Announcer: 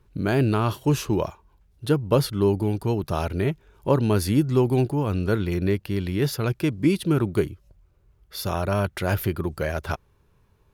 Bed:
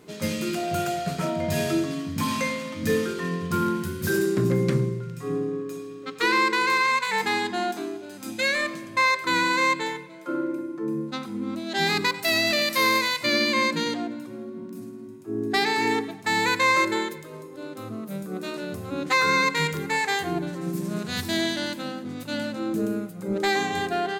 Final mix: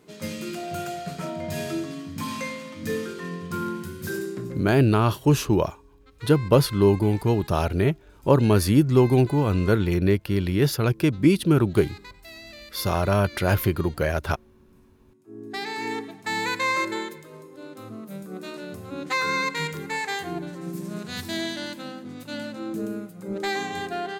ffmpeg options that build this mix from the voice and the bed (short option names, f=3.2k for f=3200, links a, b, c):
-filter_complex "[0:a]adelay=4400,volume=2.5dB[a];[1:a]volume=12dB,afade=t=out:st=4:d=0.76:silence=0.158489,afade=t=in:st=15.01:d=1.23:silence=0.141254[b];[a][b]amix=inputs=2:normalize=0"